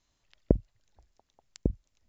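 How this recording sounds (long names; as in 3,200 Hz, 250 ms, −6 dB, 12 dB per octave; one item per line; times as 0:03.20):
background noise floor −78 dBFS
spectral slope −10.0 dB per octave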